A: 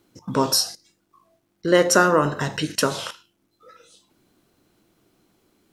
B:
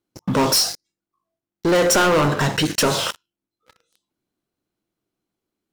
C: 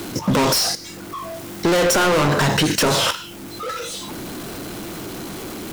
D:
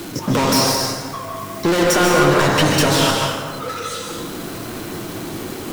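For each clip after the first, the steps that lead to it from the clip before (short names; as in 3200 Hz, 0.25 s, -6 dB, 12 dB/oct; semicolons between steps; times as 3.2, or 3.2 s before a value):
sample leveller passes 5; gain -9 dB
limiter -17 dBFS, peak gain reduction 4.5 dB; power-law curve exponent 0.35; three-band squash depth 40%; gain +3 dB
flange 1.2 Hz, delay 5.7 ms, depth 3.2 ms, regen -48%; plate-style reverb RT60 1.7 s, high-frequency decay 0.5×, pre-delay 0.12 s, DRR 0 dB; gain +3.5 dB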